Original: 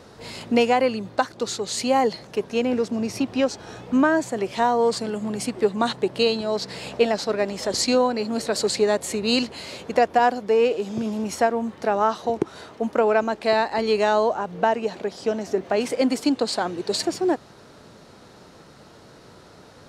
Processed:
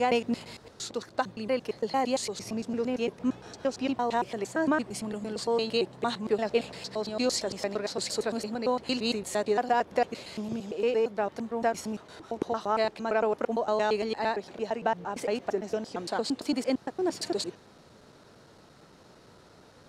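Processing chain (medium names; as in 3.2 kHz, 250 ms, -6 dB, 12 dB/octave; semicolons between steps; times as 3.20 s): slices played last to first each 114 ms, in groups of 7; trim -7 dB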